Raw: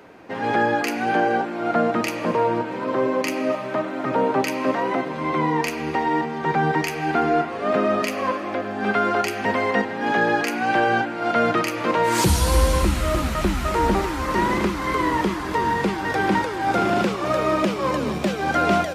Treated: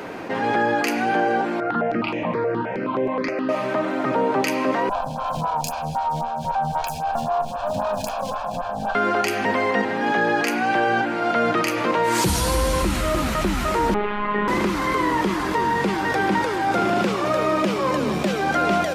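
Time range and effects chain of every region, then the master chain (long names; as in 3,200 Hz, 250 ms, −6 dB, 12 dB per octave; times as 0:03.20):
0:01.60–0:03.49: high-frequency loss of the air 240 metres + step-sequenced phaser 9.5 Hz 910–4,500 Hz
0:04.89–0:08.95: lower of the sound and its delayed copy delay 1.2 ms + phaser with its sweep stopped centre 820 Hz, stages 4 + phaser with staggered stages 3.8 Hz
0:13.94–0:14.48: Butterworth low-pass 3,200 Hz + phases set to zero 207 Hz
whole clip: parametric band 68 Hz −7 dB 0.98 octaves; envelope flattener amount 50%; level −2 dB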